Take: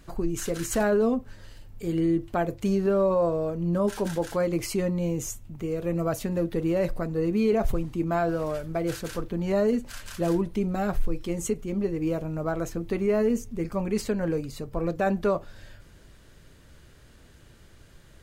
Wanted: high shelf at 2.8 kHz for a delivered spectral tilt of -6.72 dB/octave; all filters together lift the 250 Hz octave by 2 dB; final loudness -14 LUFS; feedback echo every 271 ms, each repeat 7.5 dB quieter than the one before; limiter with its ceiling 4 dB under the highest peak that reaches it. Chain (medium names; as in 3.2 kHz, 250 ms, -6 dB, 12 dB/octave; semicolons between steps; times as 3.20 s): peaking EQ 250 Hz +3 dB; treble shelf 2.8 kHz -5 dB; peak limiter -17.5 dBFS; feedback delay 271 ms, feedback 42%, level -7.5 dB; trim +13 dB